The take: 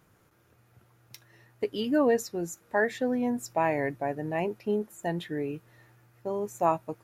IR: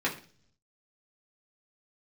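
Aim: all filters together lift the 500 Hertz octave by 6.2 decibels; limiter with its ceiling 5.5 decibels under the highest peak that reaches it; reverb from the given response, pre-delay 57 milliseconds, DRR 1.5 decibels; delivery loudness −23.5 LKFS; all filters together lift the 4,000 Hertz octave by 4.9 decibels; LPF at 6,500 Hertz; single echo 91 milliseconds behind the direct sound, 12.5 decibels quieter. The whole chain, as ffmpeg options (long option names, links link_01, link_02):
-filter_complex "[0:a]lowpass=6500,equalizer=frequency=500:width_type=o:gain=7.5,equalizer=frequency=4000:width_type=o:gain=7.5,alimiter=limit=-14dB:level=0:latency=1,aecho=1:1:91:0.237,asplit=2[link_01][link_02];[1:a]atrim=start_sample=2205,adelay=57[link_03];[link_02][link_03]afir=irnorm=-1:irlink=0,volume=-11dB[link_04];[link_01][link_04]amix=inputs=2:normalize=0,volume=0.5dB"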